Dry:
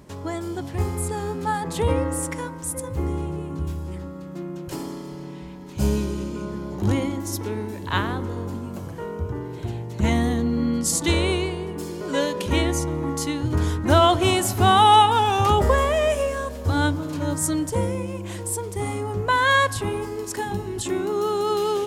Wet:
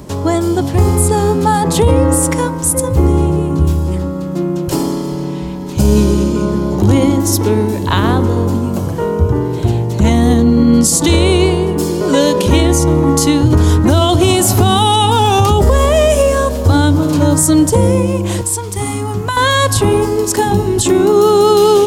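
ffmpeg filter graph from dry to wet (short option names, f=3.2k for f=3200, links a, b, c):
-filter_complex "[0:a]asettb=1/sr,asplit=3[a][b][c];[a]atrim=end=18.414[d];[b]atrim=start=18.41:end=19.37,asetpts=PTS-STARTPTS,afade=t=in:d=0.004:c=qsin,afade=t=out:st=0.956:d=0.004:c=qsin,equalizer=f=530:w=1.3:g=-13,bandreject=f=50:t=h:w=6,bandreject=f=100:t=h:w=6,bandreject=f=150:t=h:w=6,bandreject=f=200:t=h:w=6,bandreject=f=250:t=h:w=6,bandreject=f=300:t=h:w=6,bandreject=f=350:t=h:w=6,bandreject=f=400:t=h:w=6,acrossover=split=140|7200[e][f][g];[e]acompressor=threshold=-40dB:ratio=4[h];[f]acompressor=threshold=-32dB:ratio=4[i];[g]acompressor=threshold=-37dB:ratio=4[j];[h][i][j]amix=inputs=3:normalize=0[k];[c]atrim=start=19.366[l];[d][k]acrossfade=d=0.004:c1=hsin:c2=qsin[m];[m][l]acrossfade=d=0.004:c1=qsin:c2=hsin,equalizer=f=1.9k:w=1.1:g=-6,acrossover=split=360|3000[n][o][p];[o]acompressor=threshold=-25dB:ratio=6[q];[n][q][p]amix=inputs=3:normalize=0,alimiter=level_in=17dB:limit=-1dB:release=50:level=0:latency=1,volume=-1dB"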